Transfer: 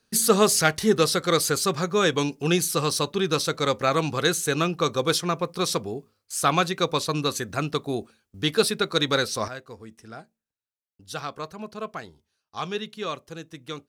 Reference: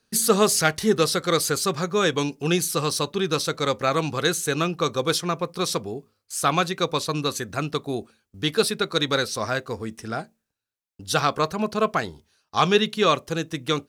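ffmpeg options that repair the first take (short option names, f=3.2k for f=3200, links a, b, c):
-af "asetnsamples=n=441:p=0,asendcmd='9.48 volume volume 11.5dB',volume=0dB"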